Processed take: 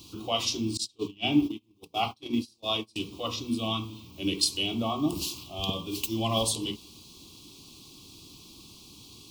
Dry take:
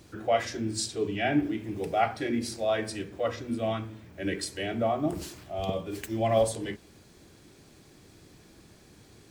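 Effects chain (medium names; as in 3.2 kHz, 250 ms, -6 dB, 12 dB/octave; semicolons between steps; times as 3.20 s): 0.77–2.96 s: gate -28 dBFS, range -31 dB; FFT filter 180 Hz 0 dB, 280 Hz +4 dB, 610 Hz -10 dB, 1.1 kHz +7 dB, 1.7 kHz -29 dB, 2.7 kHz +11 dB, 3.8 kHz +13 dB, 5.4 kHz +11 dB, 8 kHz +6 dB, 16 kHz +13 dB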